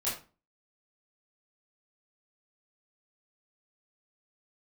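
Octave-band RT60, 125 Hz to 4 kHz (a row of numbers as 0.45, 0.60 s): 0.45, 0.45, 0.35, 0.35, 0.30, 0.25 s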